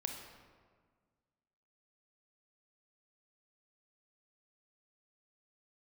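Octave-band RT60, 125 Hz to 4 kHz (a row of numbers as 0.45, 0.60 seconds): 2.0, 2.0, 1.7, 1.6, 1.3, 0.95 seconds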